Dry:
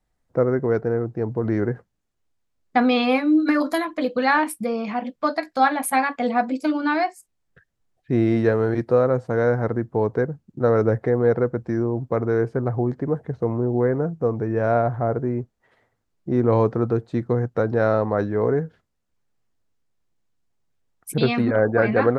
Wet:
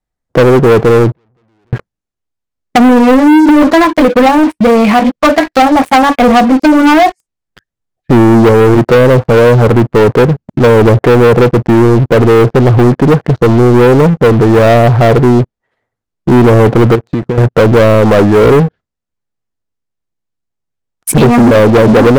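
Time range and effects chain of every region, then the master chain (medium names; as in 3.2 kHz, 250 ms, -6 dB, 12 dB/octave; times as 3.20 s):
1.12–1.73 s: compression 2:1, threshold -40 dBFS + valve stage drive 49 dB, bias 0.65 + sliding maximum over 5 samples
16.95–17.38 s: high-pass 48 Hz + compression 10:1, threshold -31 dBFS
whole clip: low-pass that closes with the level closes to 460 Hz, closed at -14 dBFS; waveshaping leveller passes 5; trim +5 dB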